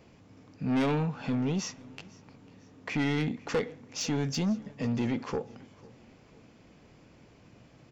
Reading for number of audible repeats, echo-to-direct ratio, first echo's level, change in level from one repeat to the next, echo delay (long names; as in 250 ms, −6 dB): 2, −22.0 dB, −23.0 dB, −7.5 dB, 498 ms